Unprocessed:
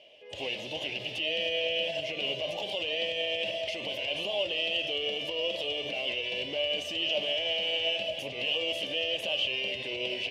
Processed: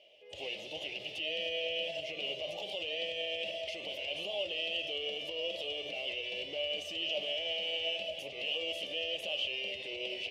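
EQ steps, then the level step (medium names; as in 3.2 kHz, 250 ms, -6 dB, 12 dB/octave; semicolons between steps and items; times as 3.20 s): graphic EQ with 31 bands 125 Hz -11 dB, 250 Hz -10 dB, 1 kHz -8 dB, 1.6 kHz -8 dB; -5.0 dB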